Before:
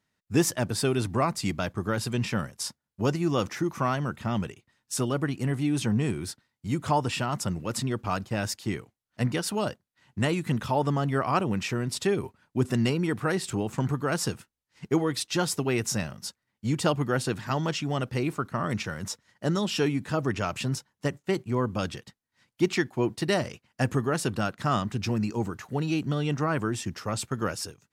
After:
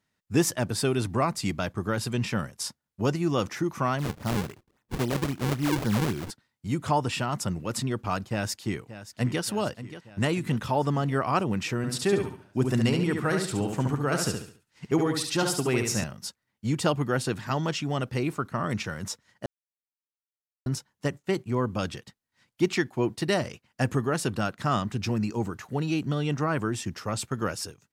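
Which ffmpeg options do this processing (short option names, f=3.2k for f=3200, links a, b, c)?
-filter_complex "[0:a]asplit=3[a][b][c];[a]afade=t=out:st=3.98:d=0.02[d];[b]acrusher=samples=40:mix=1:aa=0.000001:lfo=1:lforange=64:lforate=3.7,afade=t=in:st=3.98:d=0.02,afade=t=out:st=6.29:d=0.02[e];[c]afade=t=in:st=6.29:d=0.02[f];[d][e][f]amix=inputs=3:normalize=0,asplit=2[g][h];[h]afade=t=in:st=8.29:d=0.01,afade=t=out:st=9.42:d=0.01,aecho=0:1:580|1160|1740|2320|2900|3480|4060|4640:0.211349|0.137377|0.0892949|0.0580417|0.0377271|0.0245226|0.0159397|0.0103608[i];[g][i]amix=inputs=2:normalize=0,asettb=1/sr,asplit=3[j][k][l];[j]atrim=end=11.774[m];[k]atrim=start=11.77:end=16.04,asetpts=PTS-STARTPTS,afade=t=in:d=0.004:c=qsin,afade=t=out:st=4.266:d=0.004:c=qsin,aecho=1:1:70|140|210|280:0.562|0.197|0.0689|0.0241,atrim=end_sample=188307[n];[l]atrim=start=16.036[o];[m][n]acrossfade=d=0.004:c1=hsin:c2=qsin[p];[p][o]acrossfade=d=0.004:c1=qsin:c2=hsin,asplit=3[q][r][s];[q]atrim=end=19.46,asetpts=PTS-STARTPTS,afade=t=out:st=19.456:d=0.004:c=hsin[t];[r]atrim=start=19.46:end=20.66,asetpts=PTS-STARTPTS,volume=0[u];[s]atrim=start=20.66,asetpts=PTS-STARTPTS,afade=t=in:d=0.004:c=hsin[v];[t][u][v]concat=n=3:v=0:a=1"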